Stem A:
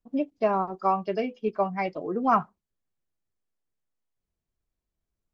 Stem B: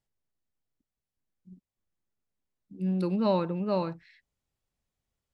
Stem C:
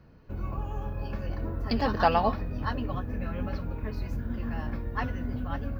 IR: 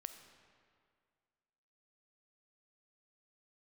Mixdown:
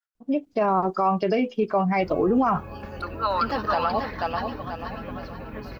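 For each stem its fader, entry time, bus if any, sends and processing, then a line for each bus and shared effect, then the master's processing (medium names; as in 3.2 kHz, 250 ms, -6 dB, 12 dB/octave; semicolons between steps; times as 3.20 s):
+0.5 dB, 0.15 s, no send, no echo send, peak limiter -19 dBFS, peak gain reduction 8.5 dB
-1.5 dB, 0.00 s, no send, no echo send, resonances exaggerated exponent 1.5; resonant high-pass 1.4 kHz, resonance Q 8.5
-10.5 dB, 1.70 s, no send, echo send -5.5 dB, bass shelf 170 Hz -11 dB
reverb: none
echo: feedback delay 486 ms, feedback 37%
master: level rider gain up to 12 dB; peak limiter -13.5 dBFS, peak gain reduction 7 dB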